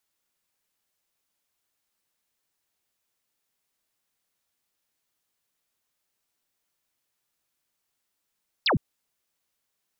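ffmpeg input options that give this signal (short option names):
-f lavfi -i "aevalsrc='0.112*clip(t/0.002,0,1)*clip((0.11-t)/0.002,0,1)*sin(2*PI*5400*0.11/log(100/5400)*(exp(log(100/5400)*t/0.11)-1))':d=0.11:s=44100"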